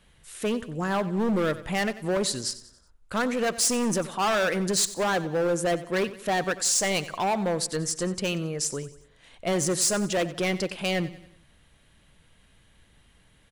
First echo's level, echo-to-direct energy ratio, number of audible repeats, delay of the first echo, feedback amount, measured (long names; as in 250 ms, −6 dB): −16.0 dB, −15.0 dB, 3, 92 ms, 46%